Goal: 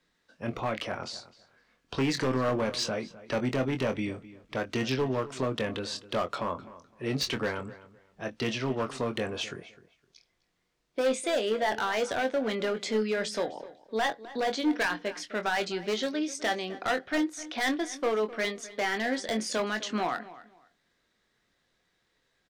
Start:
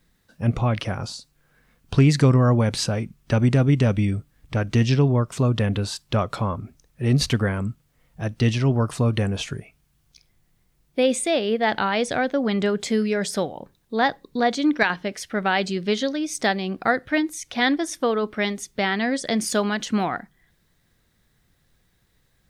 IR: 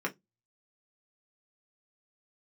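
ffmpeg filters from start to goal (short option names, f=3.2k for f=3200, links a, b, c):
-filter_complex "[0:a]acrossover=split=260 7100:gain=0.158 1 0.126[a][b][c];[a][b][c]amix=inputs=3:normalize=0,bandreject=f=810:w=18,asoftclip=type=hard:threshold=-20dB,asplit=2[d][e];[e]adelay=23,volume=-8dB[f];[d][f]amix=inputs=2:normalize=0,asplit=2[g][h];[h]adelay=256,lowpass=f=3.4k:p=1,volume=-17dB,asplit=2[i][j];[j]adelay=256,lowpass=f=3.4k:p=1,volume=0.23[k];[i][k]amix=inputs=2:normalize=0[l];[g][l]amix=inputs=2:normalize=0,volume=-3.5dB"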